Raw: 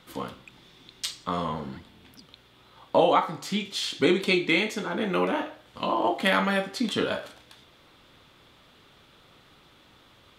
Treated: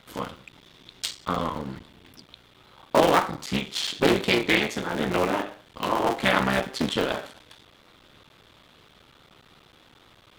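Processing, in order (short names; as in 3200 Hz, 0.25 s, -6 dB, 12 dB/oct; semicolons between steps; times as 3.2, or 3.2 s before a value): cycle switcher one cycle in 3, muted; Doppler distortion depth 0.23 ms; gain +3 dB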